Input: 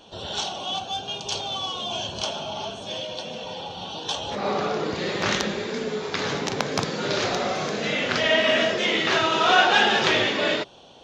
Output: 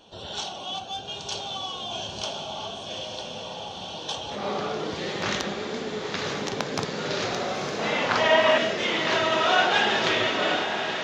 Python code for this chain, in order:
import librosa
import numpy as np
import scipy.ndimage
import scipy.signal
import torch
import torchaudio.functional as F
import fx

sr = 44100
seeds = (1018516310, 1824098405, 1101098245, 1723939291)

y = fx.peak_eq(x, sr, hz=950.0, db=14.0, octaves=1.0, at=(7.79, 8.58))
y = fx.echo_diffused(y, sr, ms=949, feedback_pct=65, wet_db=-7)
y = y * 10.0 ** (-4.0 / 20.0)